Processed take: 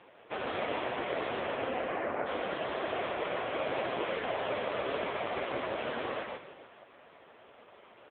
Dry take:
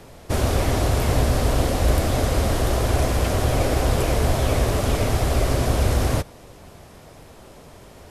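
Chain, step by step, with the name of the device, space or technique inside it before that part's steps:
0:01.40–0:02.25: low-pass filter 4,000 Hz → 1,800 Hz 24 dB per octave
tilt shelving filter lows −4.5 dB
echo with shifted repeats 149 ms, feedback 34%, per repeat −32 Hz, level −4 dB
satellite phone (band-pass filter 300–3,100 Hz; single-tap delay 481 ms −20 dB; level −4.5 dB; AMR narrowband 5.9 kbit/s 8,000 Hz)

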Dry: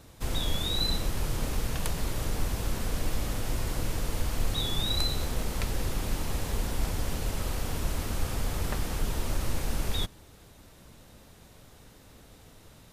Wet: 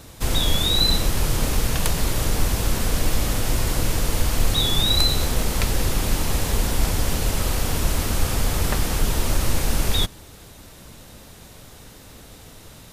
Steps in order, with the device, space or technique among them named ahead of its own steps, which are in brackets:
exciter from parts (in parallel at −5 dB: high-pass filter 3,600 Hz 6 dB per octave + soft clipping −31 dBFS, distortion −16 dB)
on the sum: level +8.5 dB

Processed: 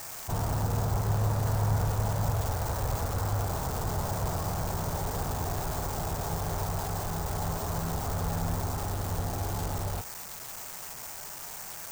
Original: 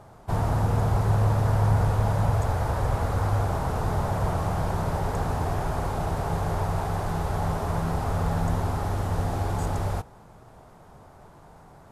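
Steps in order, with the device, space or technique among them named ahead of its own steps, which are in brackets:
budget class-D amplifier (gap after every zero crossing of 0.13 ms; spike at every zero crossing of −17 dBFS)
level −5.5 dB

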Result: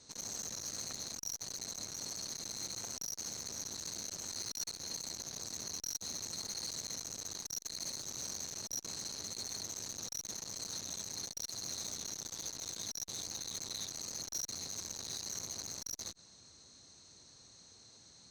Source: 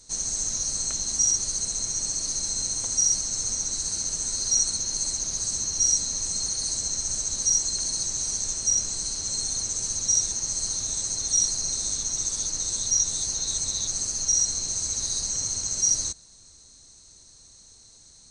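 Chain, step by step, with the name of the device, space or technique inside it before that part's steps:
valve radio (band-pass filter 110–4,300 Hz; tube saturation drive 31 dB, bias 0.3; saturating transformer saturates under 1,800 Hz)

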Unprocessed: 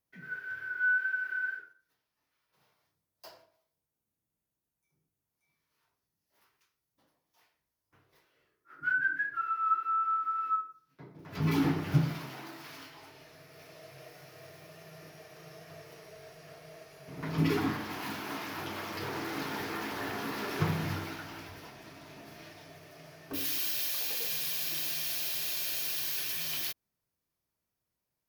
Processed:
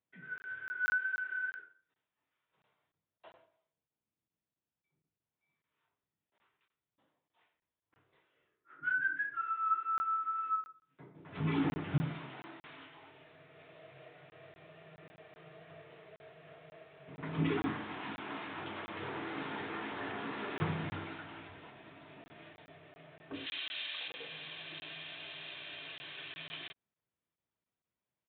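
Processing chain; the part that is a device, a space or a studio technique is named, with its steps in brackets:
0:23.46–0:24.08: spectral tilt +4 dB per octave
call with lost packets (high-pass filter 100 Hz 6 dB per octave; downsampling to 8,000 Hz; dropped packets of 20 ms random)
level −3.5 dB

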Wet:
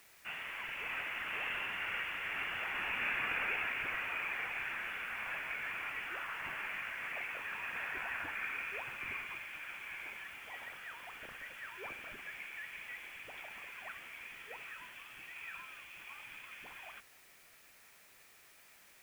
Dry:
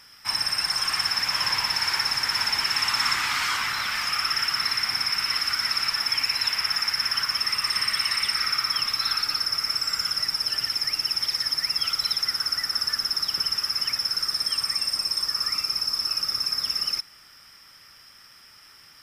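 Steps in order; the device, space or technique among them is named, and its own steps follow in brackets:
scrambled radio voice (band-pass filter 340–2,800 Hz; voice inversion scrambler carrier 3,700 Hz; white noise bed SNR 21 dB)
level −8 dB

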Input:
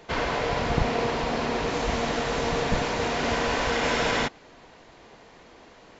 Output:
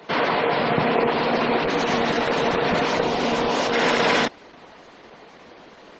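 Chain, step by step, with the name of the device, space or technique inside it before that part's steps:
0:03.01–0:03.73: dynamic equaliser 1,700 Hz, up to −7 dB, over −44 dBFS, Q 1.4
noise-suppressed video call (high-pass filter 160 Hz 24 dB per octave; gate on every frequency bin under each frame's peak −25 dB strong; level +6.5 dB; Opus 12 kbit/s 48,000 Hz)

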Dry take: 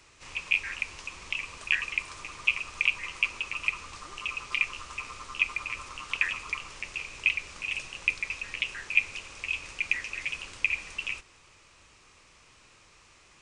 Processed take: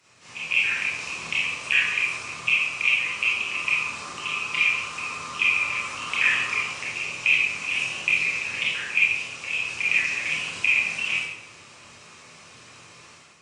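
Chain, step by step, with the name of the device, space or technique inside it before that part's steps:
far-field microphone of a smart speaker (convolution reverb RT60 0.80 s, pre-delay 23 ms, DRR −7 dB; high-pass filter 110 Hz 24 dB per octave; automatic gain control gain up to 9 dB; level −6 dB; Opus 48 kbit/s 48,000 Hz)

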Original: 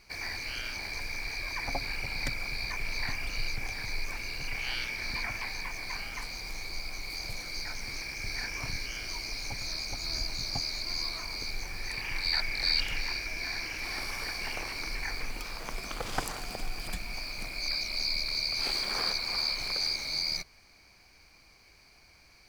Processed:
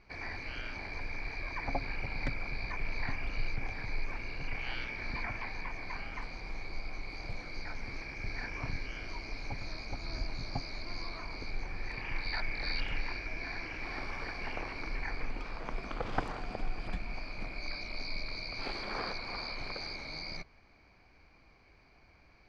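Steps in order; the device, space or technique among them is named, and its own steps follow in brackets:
phone in a pocket (low-pass filter 3,700 Hz 12 dB per octave; parametric band 270 Hz +2 dB 0.29 octaves; high-shelf EQ 2,400 Hz −11 dB)
level +1 dB

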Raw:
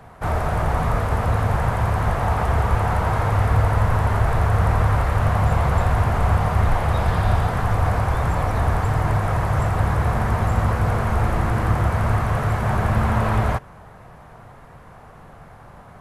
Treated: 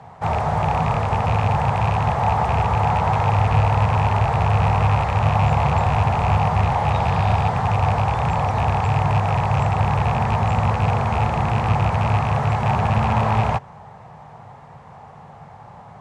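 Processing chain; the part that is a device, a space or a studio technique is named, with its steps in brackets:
car door speaker with a rattle (loose part that buzzes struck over −18 dBFS, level −19 dBFS; loudspeaker in its box 84–7,800 Hz, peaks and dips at 99 Hz +3 dB, 150 Hz +5 dB, 310 Hz −8 dB, 840 Hz +9 dB, 1,500 Hz −5 dB)

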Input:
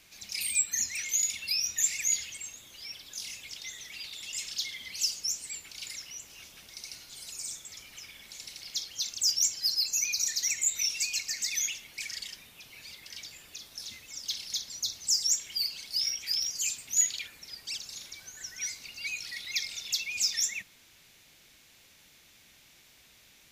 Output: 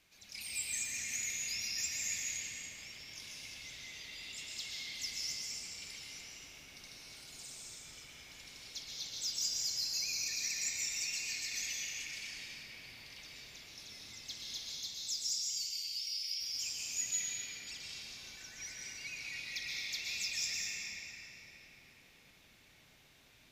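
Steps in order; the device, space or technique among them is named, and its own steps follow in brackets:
0:14.59–0:16.41: Butterworth high-pass 2,400 Hz 36 dB per octave
swimming-pool hall (convolution reverb RT60 4.8 s, pre-delay 114 ms, DRR −6.5 dB; high-shelf EQ 4,600 Hz −6 dB)
level −9 dB

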